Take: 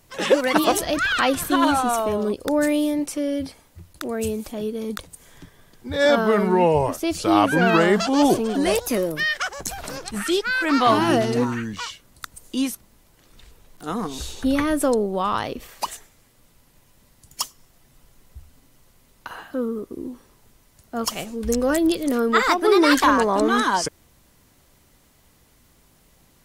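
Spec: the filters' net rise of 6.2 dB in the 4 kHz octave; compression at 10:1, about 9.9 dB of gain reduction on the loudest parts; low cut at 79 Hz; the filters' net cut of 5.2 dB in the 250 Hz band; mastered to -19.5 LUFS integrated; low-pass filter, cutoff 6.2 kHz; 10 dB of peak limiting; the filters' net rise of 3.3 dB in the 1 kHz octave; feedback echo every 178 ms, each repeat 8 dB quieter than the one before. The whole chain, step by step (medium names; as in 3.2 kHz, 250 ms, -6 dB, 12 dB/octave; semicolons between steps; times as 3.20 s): high-pass 79 Hz; low-pass 6.2 kHz; peaking EQ 250 Hz -7 dB; peaking EQ 1 kHz +4 dB; peaking EQ 4 kHz +8.5 dB; compression 10:1, threshold -20 dBFS; peak limiter -17 dBFS; feedback delay 178 ms, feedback 40%, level -8 dB; trim +7.5 dB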